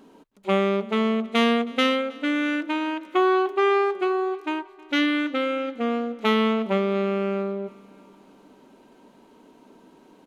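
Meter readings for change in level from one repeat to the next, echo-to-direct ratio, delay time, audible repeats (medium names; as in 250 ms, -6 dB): -5.5 dB, -21.0 dB, 316 ms, 3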